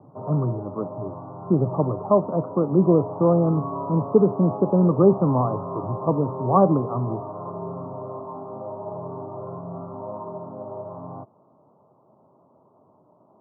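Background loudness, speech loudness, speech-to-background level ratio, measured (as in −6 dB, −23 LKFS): −34.0 LKFS, −21.5 LKFS, 12.5 dB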